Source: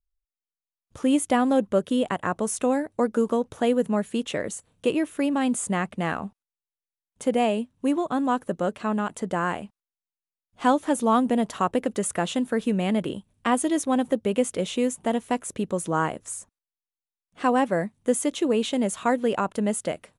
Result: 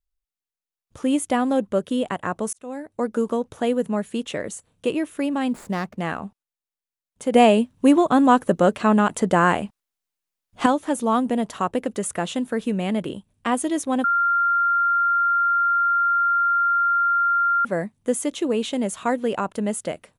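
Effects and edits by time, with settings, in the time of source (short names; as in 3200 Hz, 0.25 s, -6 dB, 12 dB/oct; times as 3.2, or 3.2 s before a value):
2.53–3.12 fade in
5.49–6.01 median filter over 15 samples
7.34–10.66 gain +8.5 dB
14.04–17.65 bleep 1390 Hz -16.5 dBFS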